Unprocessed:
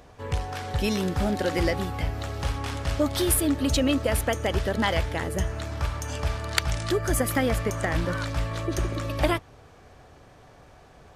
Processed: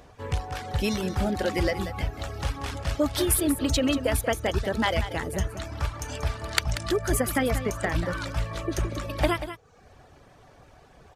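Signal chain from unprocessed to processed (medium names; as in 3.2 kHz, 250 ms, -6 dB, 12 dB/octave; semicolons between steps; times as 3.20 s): reverb removal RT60 0.76 s; delay 186 ms -11.5 dB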